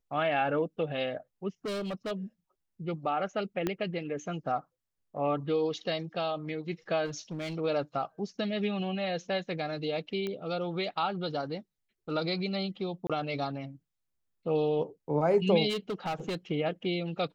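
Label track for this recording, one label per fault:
1.650000	2.120000	clipped -31.5 dBFS
3.670000	3.670000	pop -16 dBFS
7.050000	7.560000	clipped -32 dBFS
10.270000	10.270000	pop -22 dBFS
13.070000	13.100000	dropout 26 ms
15.690000	16.350000	clipped -29 dBFS

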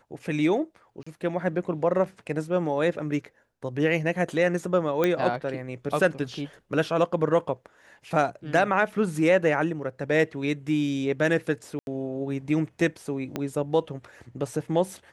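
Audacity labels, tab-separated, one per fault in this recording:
1.030000	1.060000	dropout 35 ms
5.040000	5.040000	pop -11 dBFS
11.790000	11.870000	dropout 81 ms
13.360000	13.360000	pop -15 dBFS

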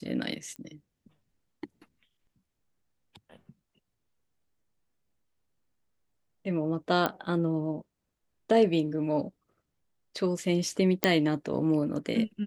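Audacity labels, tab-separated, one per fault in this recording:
0.560000	0.560000	pop -29 dBFS
7.060000	7.060000	pop -13 dBFS
11.040000	11.040000	pop -6 dBFS

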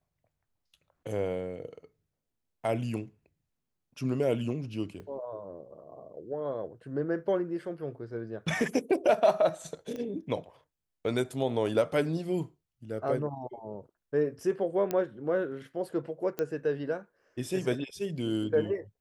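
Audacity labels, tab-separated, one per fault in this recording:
5.000000	5.000000	dropout 2.3 ms
9.960000	9.960000	pop -27 dBFS
14.910000	14.910000	pop -16 dBFS
16.390000	16.390000	pop -18 dBFS

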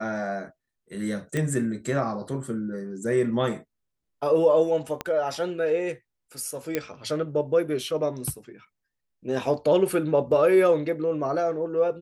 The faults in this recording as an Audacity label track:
1.370000	1.370000	pop -15 dBFS
5.010000	5.010000	pop -14 dBFS
6.750000	6.750000	pop -11 dBFS

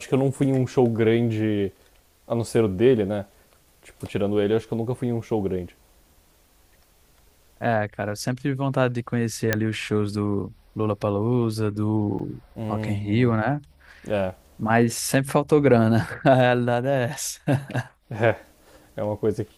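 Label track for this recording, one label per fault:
9.530000	9.530000	pop -5 dBFS
12.190000	12.200000	dropout 5.3 ms

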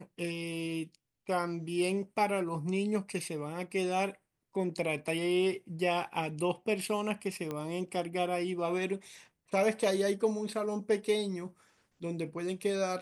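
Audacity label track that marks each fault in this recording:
7.510000	7.510000	pop -23 dBFS

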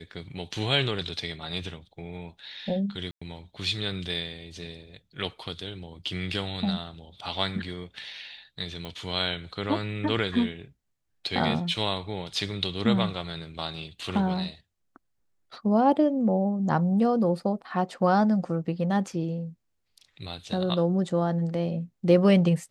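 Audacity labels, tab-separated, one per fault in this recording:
3.110000	3.210000	dropout 105 ms
8.850000	8.850000	pop -23 dBFS

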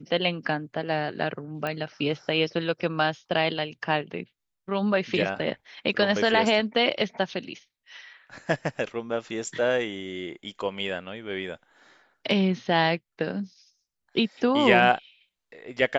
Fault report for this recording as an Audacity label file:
1.670000	1.670000	pop -17 dBFS

